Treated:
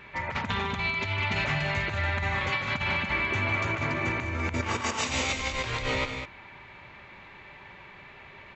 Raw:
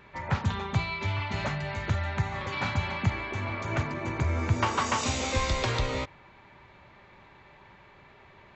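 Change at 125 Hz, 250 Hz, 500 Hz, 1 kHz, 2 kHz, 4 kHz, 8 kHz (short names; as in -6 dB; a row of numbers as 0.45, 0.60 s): -3.5, -0.5, 0.0, 0.0, +6.0, +3.0, 0.0 dB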